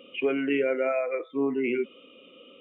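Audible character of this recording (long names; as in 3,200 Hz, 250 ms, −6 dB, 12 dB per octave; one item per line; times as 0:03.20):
background noise floor −53 dBFS
spectral slope −1.0 dB per octave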